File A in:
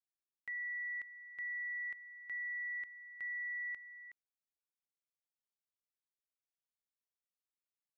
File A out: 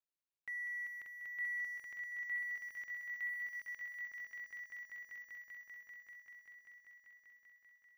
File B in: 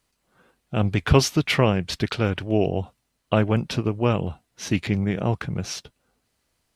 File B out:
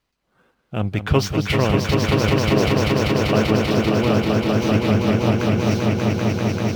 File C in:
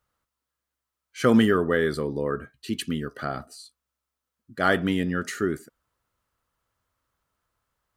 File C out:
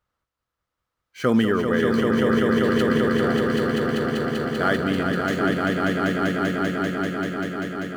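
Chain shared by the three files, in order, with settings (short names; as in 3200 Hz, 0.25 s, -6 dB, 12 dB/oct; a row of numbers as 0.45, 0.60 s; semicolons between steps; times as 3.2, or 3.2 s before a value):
median filter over 5 samples; swelling echo 0.195 s, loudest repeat 5, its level -4 dB; gain -1 dB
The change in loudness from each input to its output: -2.0, +4.5, +3.0 LU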